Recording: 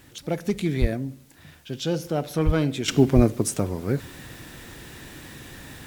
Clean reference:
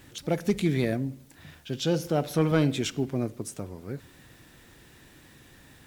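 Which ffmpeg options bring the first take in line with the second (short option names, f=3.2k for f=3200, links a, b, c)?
-filter_complex "[0:a]asplit=3[a][b][c];[a]afade=t=out:st=0.8:d=0.02[d];[b]highpass=f=140:w=0.5412,highpass=f=140:w=1.3066,afade=t=in:st=0.8:d=0.02,afade=t=out:st=0.92:d=0.02[e];[c]afade=t=in:st=0.92:d=0.02[f];[d][e][f]amix=inputs=3:normalize=0,asplit=3[g][h][i];[g]afade=t=out:st=2.45:d=0.02[j];[h]highpass=f=140:w=0.5412,highpass=f=140:w=1.3066,afade=t=in:st=2.45:d=0.02,afade=t=out:st=2.57:d=0.02[k];[i]afade=t=in:st=2.57:d=0.02[l];[j][k][l]amix=inputs=3:normalize=0,asplit=3[m][n][o];[m]afade=t=out:st=3.15:d=0.02[p];[n]highpass=f=140:w=0.5412,highpass=f=140:w=1.3066,afade=t=in:st=3.15:d=0.02,afade=t=out:st=3.27:d=0.02[q];[o]afade=t=in:st=3.27:d=0.02[r];[p][q][r]amix=inputs=3:normalize=0,agate=range=-21dB:threshold=-41dB,asetnsamples=n=441:p=0,asendcmd='2.88 volume volume -11.5dB',volume=0dB"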